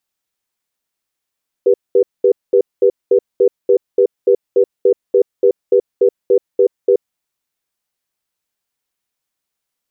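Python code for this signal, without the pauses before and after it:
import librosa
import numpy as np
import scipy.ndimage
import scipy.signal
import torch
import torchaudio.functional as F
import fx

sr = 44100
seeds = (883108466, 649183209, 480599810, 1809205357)

y = fx.cadence(sr, length_s=5.31, low_hz=395.0, high_hz=487.0, on_s=0.08, off_s=0.21, level_db=-10.0)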